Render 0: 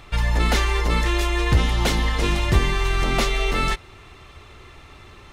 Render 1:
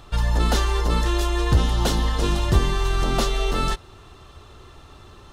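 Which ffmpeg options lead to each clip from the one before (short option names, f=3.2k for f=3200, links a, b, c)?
-af "equalizer=f=2.2k:t=o:w=0.48:g=-13"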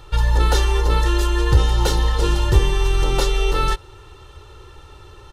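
-af "aecho=1:1:2.2:0.77"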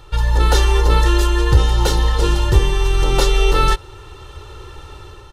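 -af "dynaudnorm=f=170:g=5:m=6.5dB"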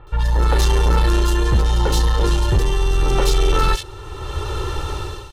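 -filter_complex "[0:a]dynaudnorm=f=180:g=5:m=12.5dB,asoftclip=type=tanh:threshold=-10dB,acrossover=split=2400[a][b];[b]adelay=70[c];[a][c]amix=inputs=2:normalize=0"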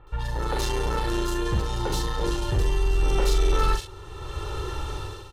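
-filter_complex "[0:a]asplit=2[a][b];[b]adelay=43,volume=-5dB[c];[a][c]amix=inputs=2:normalize=0,volume=-8dB"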